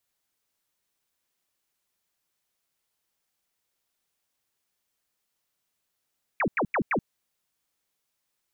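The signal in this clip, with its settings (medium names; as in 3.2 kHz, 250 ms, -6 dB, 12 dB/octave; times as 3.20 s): burst of laser zaps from 2.6 kHz, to 150 Hz, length 0.08 s sine, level -22 dB, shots 4, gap 0.09 s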